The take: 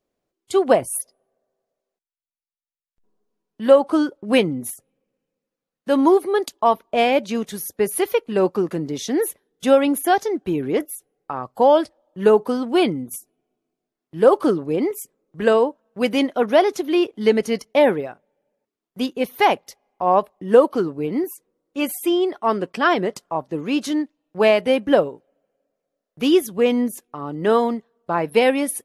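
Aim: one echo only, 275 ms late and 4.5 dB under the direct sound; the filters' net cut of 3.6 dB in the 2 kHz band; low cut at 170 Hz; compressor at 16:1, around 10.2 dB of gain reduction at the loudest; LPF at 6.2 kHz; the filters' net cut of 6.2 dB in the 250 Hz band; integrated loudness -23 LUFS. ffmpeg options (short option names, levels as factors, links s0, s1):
-af "highpass=170,lowpass=6200,equalizer=f=250:t=o:g=-7.5,equalizer=f=2000:t=o:g=-4.5,acompressor=threshold=0.112:ratio=16,aecho=1:1:275:0.596,volume=1.5"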